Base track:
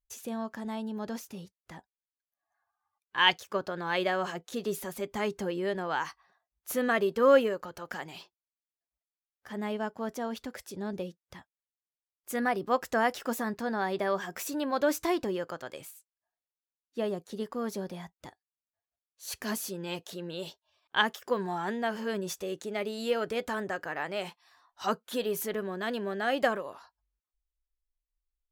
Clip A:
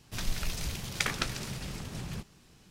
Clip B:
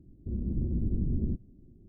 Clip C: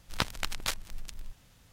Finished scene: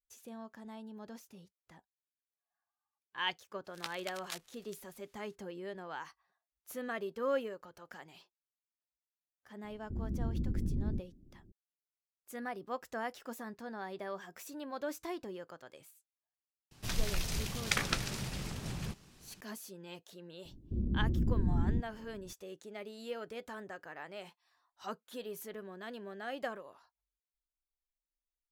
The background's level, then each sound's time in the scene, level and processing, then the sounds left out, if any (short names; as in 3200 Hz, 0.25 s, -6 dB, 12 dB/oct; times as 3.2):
base track -12 dB
3.64 add C -10 dB, fades 0.02 s + HPF 1300 Hz 6 dB/oct
9.64 add B -5 dB
16.71 add A -1 dB
20.45 add B -1 dB